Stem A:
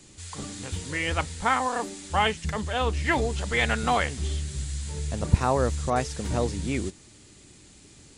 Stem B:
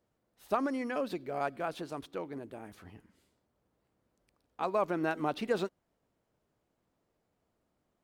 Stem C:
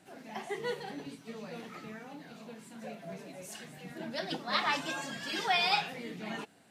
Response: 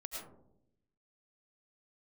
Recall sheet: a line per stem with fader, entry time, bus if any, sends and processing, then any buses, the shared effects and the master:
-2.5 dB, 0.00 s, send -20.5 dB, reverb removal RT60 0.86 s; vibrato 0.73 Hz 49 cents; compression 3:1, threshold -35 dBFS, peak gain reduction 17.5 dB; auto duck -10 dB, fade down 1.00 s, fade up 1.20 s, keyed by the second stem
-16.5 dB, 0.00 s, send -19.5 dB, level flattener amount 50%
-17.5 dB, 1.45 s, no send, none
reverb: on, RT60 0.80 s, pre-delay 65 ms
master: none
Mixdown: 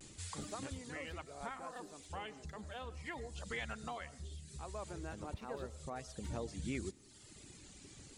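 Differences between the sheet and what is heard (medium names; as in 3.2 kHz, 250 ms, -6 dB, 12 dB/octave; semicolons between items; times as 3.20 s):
stem B: missing level flattener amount 50%; stem C: muted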